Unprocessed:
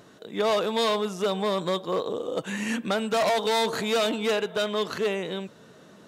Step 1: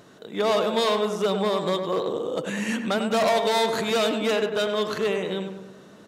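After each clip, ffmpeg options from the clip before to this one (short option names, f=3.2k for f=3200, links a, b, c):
-filter_complex "[0:a]asplit=2[a][b];[b]adelay=99,lowpass=f=1.8k:p=1,volume=-6dB,asplit=2[c][d];[d]adelay=99,lowpass=f=1.8k:p=1,volume=0.55,asplit=2[e][f];[f]adelay=99,lowpass=f=1.8k:p=1,volume=0.55,asplit=2[g][h];[h]adelay=99,lowpass=f=1.8k:p=1,volume=0.55,asplit=2[i][j];[j]adelay=99,lowpass=f=1.8k:p=1,volume=0.55,asplit=2[k][l];[l]adelay=99,lowpass=f=1.8k:p=1,volume=0.55,asplit=2[m][n];[n]adelay=99,lowpass=f=1.8k:p=1,volume=0.55[o];[a][c][e][g][i][k][m][o]amix=inputs=8:normalize=0,volume=1dB"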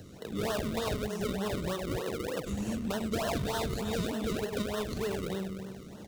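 -filter_complex "[0:a]acrossover=split=350|3500[a][b][c];[b]acrusher=samples=36:mix=1:aa=0.000001:lfo=1:lforange=36:lforate=3.3[d];[a][d][c]amix=inputs=3:normalize=0,equalizer=f=79:w=0.69:g=10,acompressor=threshold=-35dB:ratio=2.5"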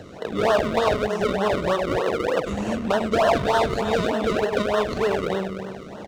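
-af "firequalizer=gain_entry='entry(110,0);entry(630,12);entry(3800,3);entry(13000,-11)':delay=0.05:min_phase=1,volume=4dB"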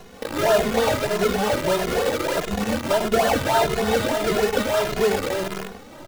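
-filter_complex "[0:a]bandreject=f=1.1k:w=7.8,acrossover=split=3000[a][b];[a]acrusher=bits=5:dc=4:mix=0:aa=0.000001[c];[c][b]amix=inputs=2:normalize=0,asplit=2[d][e];[e]adelay=2.4,afreqshift=1.6[f];[d][f]amix=inputs=2:normalize=1,volume=3.5dB"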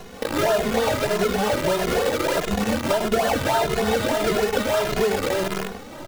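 -af "acompressor=threshold=-23dB:ratio=3,volume=4dB"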